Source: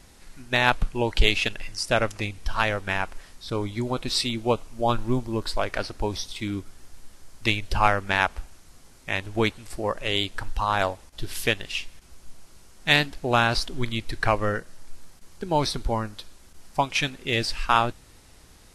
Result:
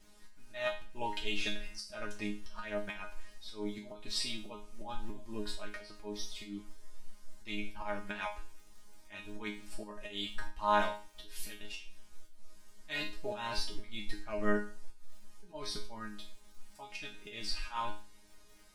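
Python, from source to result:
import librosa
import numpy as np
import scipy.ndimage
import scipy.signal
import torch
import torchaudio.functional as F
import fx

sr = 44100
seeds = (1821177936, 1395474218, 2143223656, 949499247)

y = fx.dmg_crackle(x, sr, seeds[0], per_s=25.0, level_db=-38.0)
y = fx.auto_swell(y, sr, attack_ms=214.0)
y = fx.resonator_bank(y, sr, root=56, chord='fifth', decay_s=0.37)
y = F.gain(torch.from_numpy(y), 7.5).numpy()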